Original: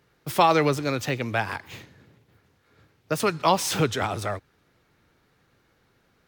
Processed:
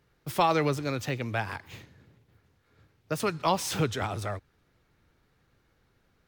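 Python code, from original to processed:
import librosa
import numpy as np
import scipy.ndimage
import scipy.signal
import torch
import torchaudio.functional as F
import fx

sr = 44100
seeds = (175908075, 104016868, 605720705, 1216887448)

y = fx.low_shelf(x, sr, hz=77.0, db=12.0)
y = F.gain(torch.from_numpy(y), -5.5).numpy()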